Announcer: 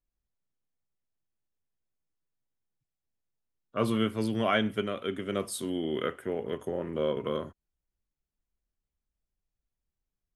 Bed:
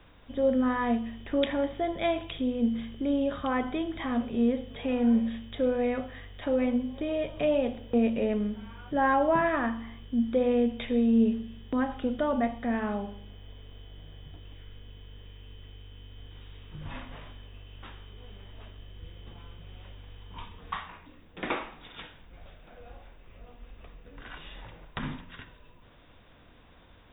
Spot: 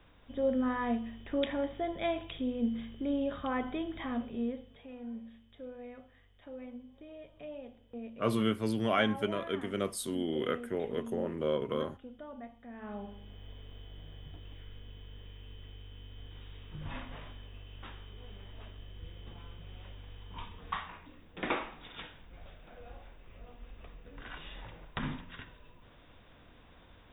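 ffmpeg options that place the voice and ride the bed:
ffmpeg -i stem1.wav -i stem2.wav -filter_complex "[0:a]adelay=4450,volume=-2dB[link_01];[1:a]volume=12.5dB,afade=type=out:start_time=4.01:duration=0.86:silence=0.199526,afade=type=in:start_time=12.75:duration=0.68:silence=0.133352[link_02];[link_01][link_02]amix=inputs=2:normalize=0" out.wav

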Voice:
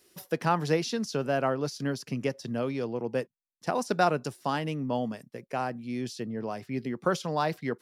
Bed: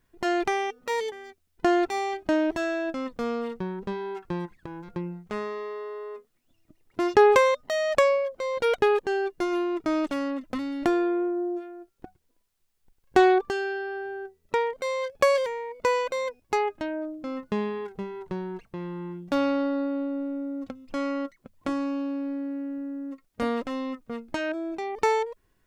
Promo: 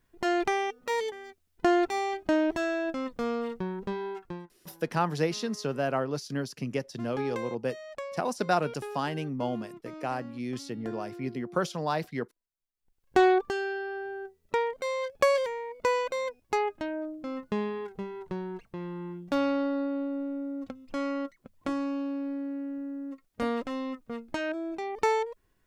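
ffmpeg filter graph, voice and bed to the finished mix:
ffmpeg -i stem1.wav -i stem2.wav -filter_complex "[0:a]adelay=4500,volume=-1.5dB[link_01];[1:a]volume=14dB,afade=type=out:start_time=4.06:duration=0.44:silence=0.149624,afade=type=in:start_time=12.75:duration=0.49:silence=0.16788[link_02];[link_01][link_02]amix=inputs=2:normalize=0" out.wav

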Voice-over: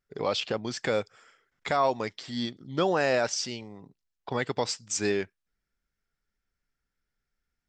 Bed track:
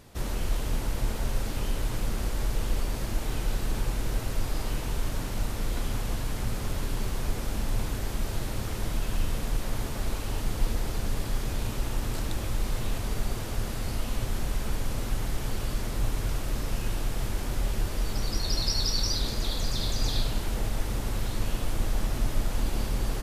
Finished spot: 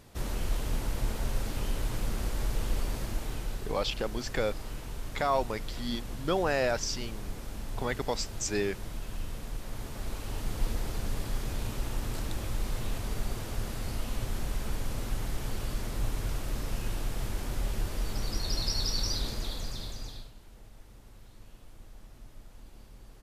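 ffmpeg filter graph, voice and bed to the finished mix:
ffmpeg -i stem1.wav -i stem2.wav -filter_complex "[0:a]adelay=3500,volume=-3dB[link_01];[1:a]volume=3dB,afade=type=out:start_time=2.91:duration=0.79:silence=0.473151,afade=type=in:start_time=9.63:duration=1.03:silence=0.530884,afade=type=out:start_time=19.16:duration=1.16:silence=0.105925[link_02];[link_01][link_02]amix=inputs=2:normalize=0" out.wav

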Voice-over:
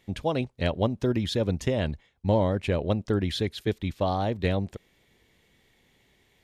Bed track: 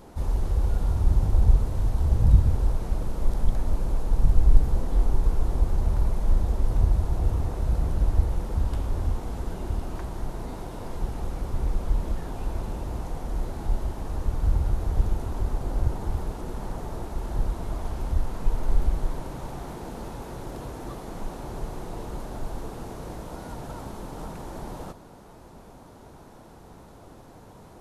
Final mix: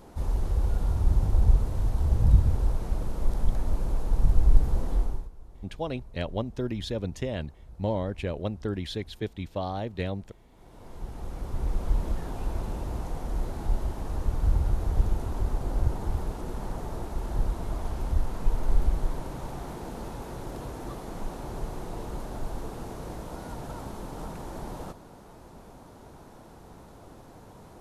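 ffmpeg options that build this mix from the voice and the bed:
ffmpeg -i stem1.wav -i stem2.wav -filter_complex "[0:a]adelay=5550,volume=-5.5dB[link_01];[1:a]volume=20.5dB,afade=type=out:start_time=4.91:duration=0.38:silence=0.0841395,afade=type=in:start_time=10.51:duration=1.41:silence=0.0749894[link_02];[link_01][link_02]amix=inputs=2:normalize=0" out.wav

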